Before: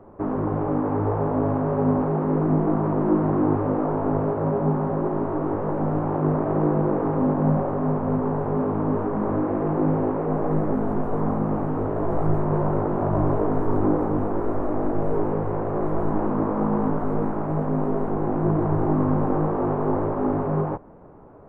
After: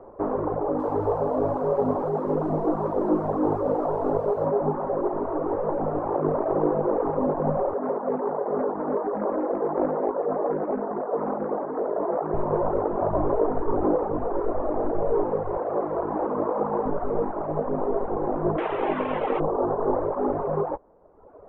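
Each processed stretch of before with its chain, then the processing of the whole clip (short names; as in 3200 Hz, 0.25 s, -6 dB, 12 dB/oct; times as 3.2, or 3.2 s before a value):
0.56–4.46 high shelf 2100 Hz -6 dB + de-hum 178 Hz, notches 2 + lo-fi delay 0.23 s, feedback 35%, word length 7-bit, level -12 dB
7.75–12.34 Chebyshev band-pass 190–1900 Hz, order 3 + Doppler distortion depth 0.33 ms
15.57–16.86 HPF 160 Hz 6 dB/oct + doubler 40 ms -11.5 dB
18.58–19.4 delta modulation 16 kbps, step -21 dBFS + low shelf 160 Hz -12 dB + doubler 15 ms -12 dB
whole clip: LPF 1700 Hz 6 dB/oct; reverb removal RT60 1.2 s; graphic EQ 125/250/500/1000 Hz -9/-4/+7/+3 dB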